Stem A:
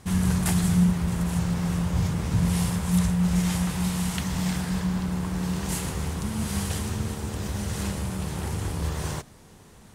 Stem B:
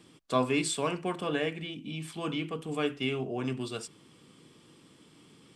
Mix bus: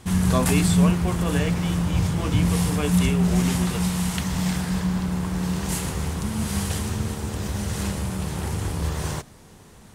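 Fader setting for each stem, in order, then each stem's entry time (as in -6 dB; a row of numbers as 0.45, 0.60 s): +2.5, +2.5 dB; 0.00, 0.00 s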